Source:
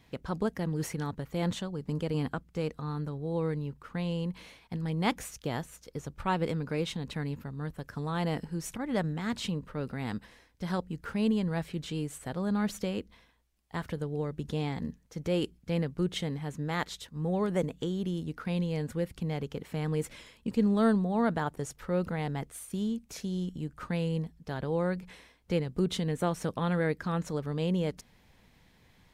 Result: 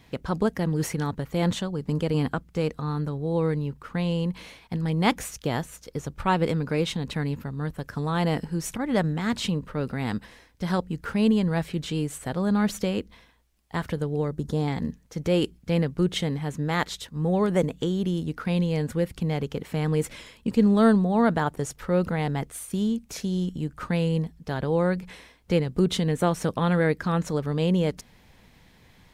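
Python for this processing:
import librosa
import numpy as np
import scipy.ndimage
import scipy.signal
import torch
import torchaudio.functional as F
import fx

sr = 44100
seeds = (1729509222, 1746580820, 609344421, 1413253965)

y = fx.peak_eq(x, sr, hz=2600.0, db=-13.0, octaves=0.82, at=(14.28, 14.68))
y = F.gain(torch.from_numpy(y), 6.5).numpy()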